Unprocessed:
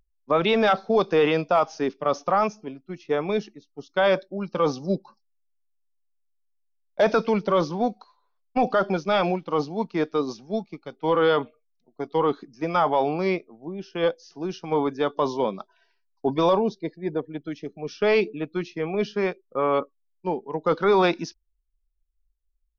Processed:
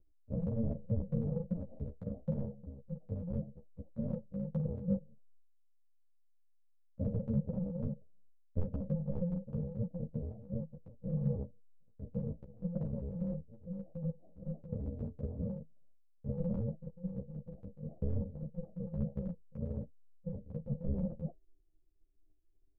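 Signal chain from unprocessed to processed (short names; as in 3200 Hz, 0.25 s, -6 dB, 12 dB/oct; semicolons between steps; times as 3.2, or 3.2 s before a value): FFT order left unsorted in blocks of 128 samples; steep low-pass 590 Hz 48 dB/oct; transient shaper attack +5 dB, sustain +9 dB; resonator 160 Hz, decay 0.16 s, harmonics all, mix 40%; ensemble effect; gain +3 dB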